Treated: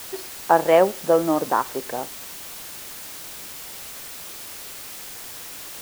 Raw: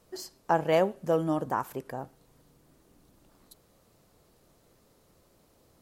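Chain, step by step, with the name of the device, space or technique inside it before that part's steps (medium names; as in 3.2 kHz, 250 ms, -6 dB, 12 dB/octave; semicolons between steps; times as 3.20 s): wax cylinder (band-pass 280–2500 Hz; wow and flutter; white noise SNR 12 dB); trim +9 dB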